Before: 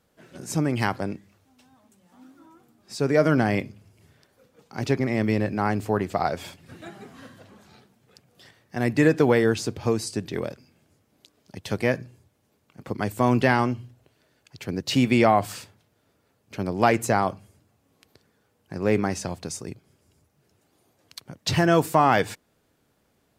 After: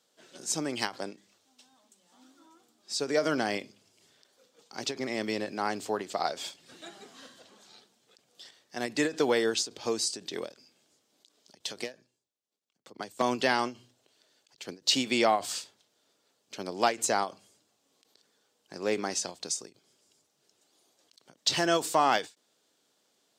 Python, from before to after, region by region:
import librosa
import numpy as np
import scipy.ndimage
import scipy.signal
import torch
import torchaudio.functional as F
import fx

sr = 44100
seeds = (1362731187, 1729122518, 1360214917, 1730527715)

y = fx.chain(x, sr, fx.overload_stage(gain_db=13.5),
    fx.transient(attack_db=3, sustain_db=-12),
    fx.band_widen(depth_pct=70), at=(11.84, 13.22))
y = scipy.signal.sosfilt(scipy.signal.butter(2, 310.0, 'highpass', fs=sr, output='sos'), y)
y = fx.band_shelf(y, sr, hz=5100.0, db=10.0, octaves=1.7)
y = fx.end_taper(y, sr, db_per_s=230.0)
y = y * librosa.db_to_amplitude(-5.0)